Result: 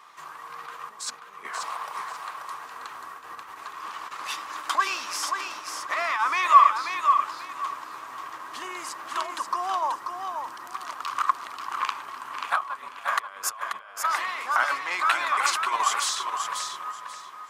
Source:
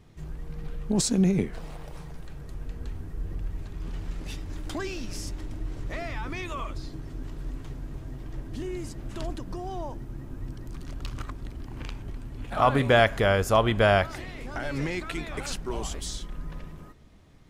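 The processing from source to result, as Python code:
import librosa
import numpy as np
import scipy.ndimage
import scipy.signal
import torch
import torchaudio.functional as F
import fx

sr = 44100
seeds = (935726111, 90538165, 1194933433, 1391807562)

y = fx.over_compress(x, sr, threshold_db=-32.0, ratio=-0.5)
y = fx.highpass_res(y, sr, hz=1100.0, q=7.0)
y = fx.echo_feedback(y, sr, ms=535, feedback_pct=23, wet_db=-6)
y = y * librosa.db_to_amplitude(5.5)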